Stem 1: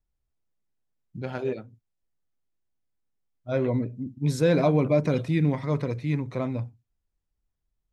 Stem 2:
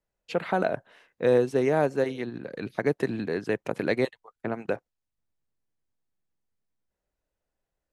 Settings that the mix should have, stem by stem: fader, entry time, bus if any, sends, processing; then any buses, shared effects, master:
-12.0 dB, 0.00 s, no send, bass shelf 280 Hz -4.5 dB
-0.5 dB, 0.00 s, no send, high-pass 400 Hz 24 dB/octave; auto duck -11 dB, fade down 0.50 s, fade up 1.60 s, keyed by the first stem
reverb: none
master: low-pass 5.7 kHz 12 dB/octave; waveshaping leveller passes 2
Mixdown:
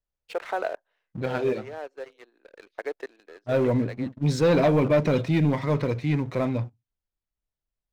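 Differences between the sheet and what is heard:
stem 1 -12.0 dB -> -1.5 dB; stem 2 -0.5 dB -> -9.0 dB

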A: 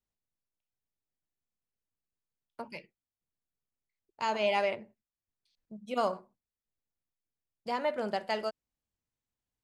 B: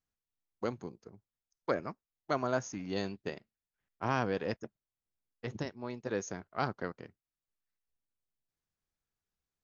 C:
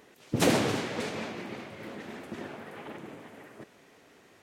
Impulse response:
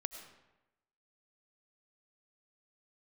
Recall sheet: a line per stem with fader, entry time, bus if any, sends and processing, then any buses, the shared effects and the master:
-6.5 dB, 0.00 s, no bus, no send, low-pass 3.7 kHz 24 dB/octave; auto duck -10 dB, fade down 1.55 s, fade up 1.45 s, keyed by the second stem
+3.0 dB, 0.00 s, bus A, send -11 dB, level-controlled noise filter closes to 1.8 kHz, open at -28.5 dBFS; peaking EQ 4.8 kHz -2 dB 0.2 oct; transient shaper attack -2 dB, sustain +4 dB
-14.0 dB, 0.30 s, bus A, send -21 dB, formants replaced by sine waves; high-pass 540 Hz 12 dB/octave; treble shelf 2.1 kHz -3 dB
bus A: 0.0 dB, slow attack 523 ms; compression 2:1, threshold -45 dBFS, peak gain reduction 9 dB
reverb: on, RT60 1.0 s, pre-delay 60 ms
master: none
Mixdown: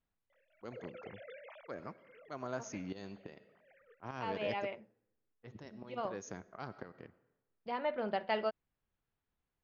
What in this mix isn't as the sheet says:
stem A -6.5 dB -> +0.5 dB; stem B: missing transient shaper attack -2 dB, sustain +4 dB; reverb return -9.5 dB

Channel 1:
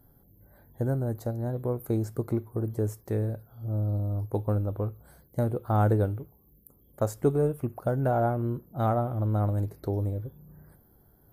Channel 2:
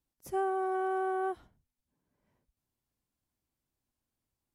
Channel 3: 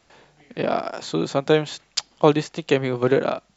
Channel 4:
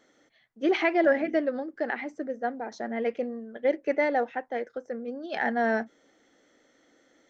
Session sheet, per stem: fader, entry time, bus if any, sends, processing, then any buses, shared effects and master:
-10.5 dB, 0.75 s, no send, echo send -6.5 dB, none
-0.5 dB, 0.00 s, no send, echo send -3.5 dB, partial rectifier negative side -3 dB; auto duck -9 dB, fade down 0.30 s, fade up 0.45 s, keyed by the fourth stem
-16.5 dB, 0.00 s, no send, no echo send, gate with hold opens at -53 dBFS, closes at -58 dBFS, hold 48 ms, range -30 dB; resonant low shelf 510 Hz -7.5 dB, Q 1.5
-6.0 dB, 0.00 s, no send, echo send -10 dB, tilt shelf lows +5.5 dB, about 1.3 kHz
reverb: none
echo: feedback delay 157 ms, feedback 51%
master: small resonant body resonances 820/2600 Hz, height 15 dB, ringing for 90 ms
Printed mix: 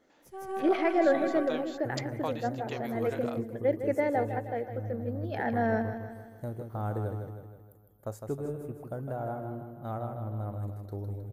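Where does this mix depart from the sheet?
stem 1: entry 0.75 s -> 1.05 s; master: missing small resonant body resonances 820/2600 Hz, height 15 dB, ringing for 90 ms

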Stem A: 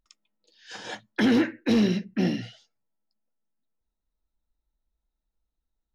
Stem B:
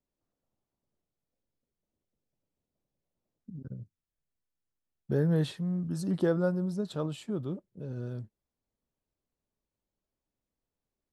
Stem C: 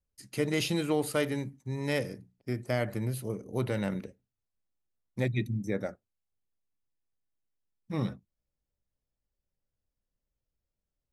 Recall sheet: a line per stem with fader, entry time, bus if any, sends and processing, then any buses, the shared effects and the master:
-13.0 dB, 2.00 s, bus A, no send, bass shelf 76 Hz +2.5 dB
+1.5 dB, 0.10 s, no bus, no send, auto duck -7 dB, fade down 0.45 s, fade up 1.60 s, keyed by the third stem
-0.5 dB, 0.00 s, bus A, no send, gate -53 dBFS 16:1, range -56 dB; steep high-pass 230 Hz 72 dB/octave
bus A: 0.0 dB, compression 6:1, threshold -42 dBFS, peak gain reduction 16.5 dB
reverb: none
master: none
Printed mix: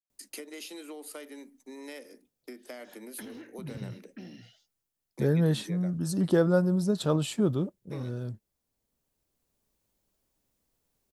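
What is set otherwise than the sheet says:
stem B +1.5 dB -> +9.0 dB; master: extra treble shelf 5.6 kHz +8.5 dB

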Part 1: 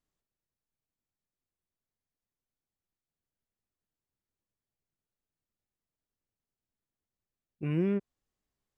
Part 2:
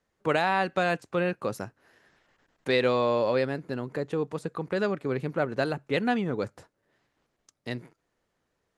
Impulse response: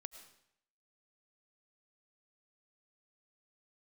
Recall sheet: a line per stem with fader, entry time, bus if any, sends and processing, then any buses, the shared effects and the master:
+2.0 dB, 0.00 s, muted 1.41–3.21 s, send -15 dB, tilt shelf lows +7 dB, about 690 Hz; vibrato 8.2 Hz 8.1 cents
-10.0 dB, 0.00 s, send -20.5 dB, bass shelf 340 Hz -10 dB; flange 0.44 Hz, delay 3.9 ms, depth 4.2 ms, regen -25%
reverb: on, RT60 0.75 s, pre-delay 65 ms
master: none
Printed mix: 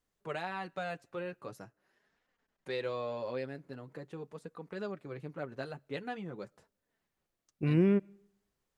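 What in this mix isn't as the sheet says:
stem 1: missing tilt shelf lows +7 dB, about 690 Hz; stem 2: missing bass shelf 340 Hz -10 dB

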